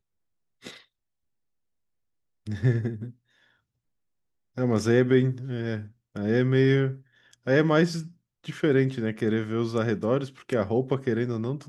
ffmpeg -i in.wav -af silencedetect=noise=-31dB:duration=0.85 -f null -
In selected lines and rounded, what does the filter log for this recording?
silence_start: 0.68
silence_end: 2.48 | silence_duration: 1.79
silence_start: 3.07
silence_end: 4.58 | silence_duration: 1.51